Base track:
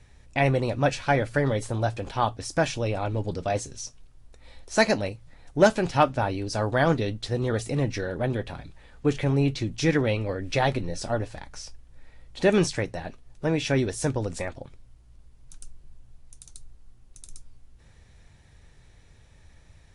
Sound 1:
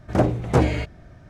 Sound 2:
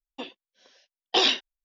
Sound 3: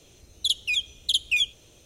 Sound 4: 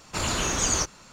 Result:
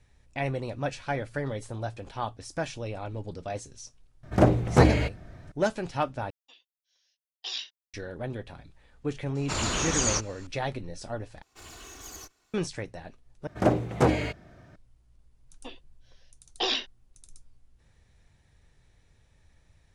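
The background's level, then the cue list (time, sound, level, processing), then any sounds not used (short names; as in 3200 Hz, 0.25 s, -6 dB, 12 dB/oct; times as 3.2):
base track -8 dB
4.23 add 1 -0.5 dB
6.3 replace with 2 -7 dB + differentiator
9.35 add 4 -2 dB + LPF 9400 Hz 24 dB/oct
11.42 replace with 4 -18 dB + minimum comb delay 2.7 ms
13.47 replace with 1 -2 dB + low shelf 96 Hz -11.5 dB
15.46 add 2 -6.5 dB
not used: 3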